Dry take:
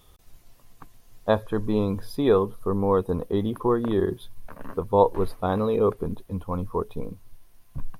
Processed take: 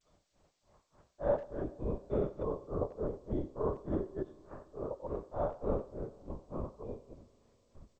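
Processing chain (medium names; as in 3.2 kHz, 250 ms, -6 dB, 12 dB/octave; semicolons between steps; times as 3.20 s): spectrogram pixelated in time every 200 ms; compression 4:1, threshold -25 dBFS, peak gain reduction 7.5 dB; high-pass 120 Hz 12 dB/octave; LPC vocoder at 8 kHz whisper; low-pass 1.4 kHz 12 dB/octave; peaking EQ 590 Hz +9 dB 0.31 oct; granulator 262 ms, grains 3.4 per s, pitch spread up and down by 0 st; speakerphone echo 90 ms, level -16 dB; Schroeder reverb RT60 3.8 s, combs from 31 ms, DRR 19.5 dB; trim -2.5 dB; G.722 64 kbps 16 kHz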